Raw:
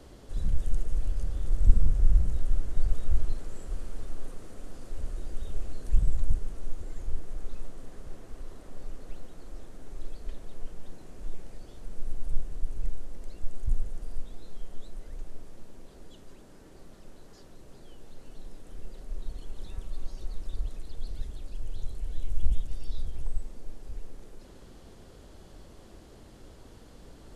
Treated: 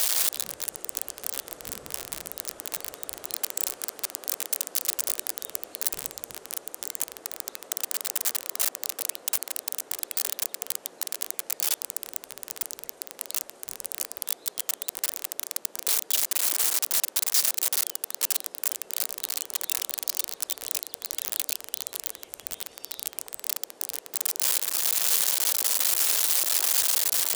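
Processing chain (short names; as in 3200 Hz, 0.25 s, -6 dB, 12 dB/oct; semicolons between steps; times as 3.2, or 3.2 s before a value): switching spikes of -15.5 dBFS; Chebyshev high-pass 520 Hz, order 2; gain +6 dB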